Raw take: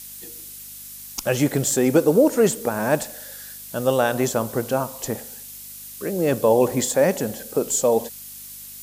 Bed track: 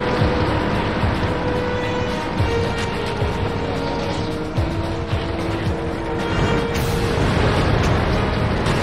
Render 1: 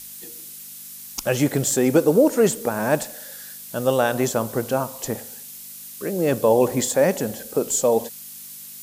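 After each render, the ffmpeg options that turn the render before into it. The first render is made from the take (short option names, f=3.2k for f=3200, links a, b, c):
-af "bandreject=f=50:t=h:w=4,bandreject=f=100:t=h:w=4"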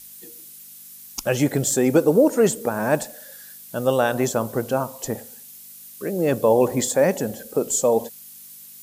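-af "afftdn=nr=6:nf=-39"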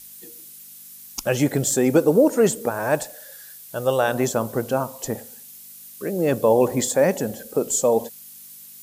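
-filter_complex "[0:a]asettb=1/sr,asplit=3[a][b][c];[a]atrim=end=2.704[d];[b]atrim=start=2.7:end=4.08,asetpts=PTS-STARTPTS,afade=t=in:d=0.004:c=qsin,afade=t=out:st=1.376:d=0.004:c=qsin,equalizer=f=220:t=o:w=0.52:g=-12[e];[c]atrim=start=4.076[f];[d][e]acrossfade=d=0.004:c1=hsin:c2=qsin[g];[g][f]acrossfade=d=0.004:c1=qsin:c2=hsin"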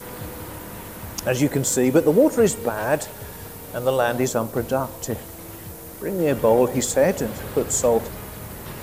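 -filter_complex "[1:a]volume=-17dB[a];[0:a][a]amix=inputs=2:normalize=0"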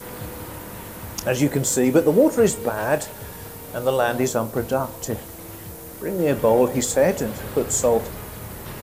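-filter_complex "[0:a]asplit=2[a][b];[b]adelay=28,volume=-13dB[c];[a][c]amix=inputs=2:normalize=0"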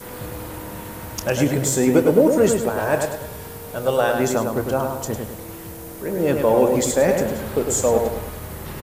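-filter_complex "[0:a]asplit=2[a][b];[b]adelay=103,lowpass=f=3.5k:p=1,volume=-4.5dB,asplit=2[c][d];[d]adelay=103,lowpass=f=3.5k:p=1,volume=0.46,asplit=2[e][f];[f]adelay=103,lowpass=f=3.5k:p=1,volume=0.46,asplit=2[g][h];[h]adelay=103,lowpass=f=3.5k:p=1,volume=0.46,asplit=2[i][j];[j]adelay=103,lowpass=f=3.5k:p=1,volume=0.46,asplit=2[k][l];[l]adelay=103,lowpass=f=3.5k:p=1,volume=0.46[m];[a][c][e][g][i][k][m]amix=inputs=7:normalize=0"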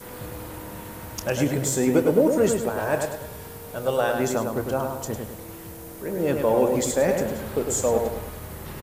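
-af "volume=-4dB"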